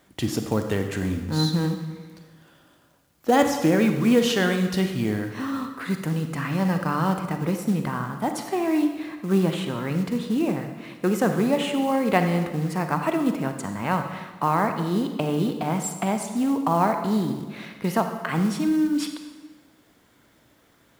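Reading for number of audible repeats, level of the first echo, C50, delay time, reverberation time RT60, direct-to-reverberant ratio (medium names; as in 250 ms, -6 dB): no echo, no echo, 7.0 dB, no echo, 1.3 s, 6.0 dB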